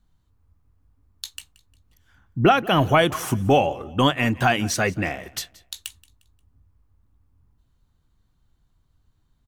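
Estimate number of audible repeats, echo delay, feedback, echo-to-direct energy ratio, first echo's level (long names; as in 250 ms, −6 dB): 2, 177 ms, 37%, −21.0 dB, −21.5 dB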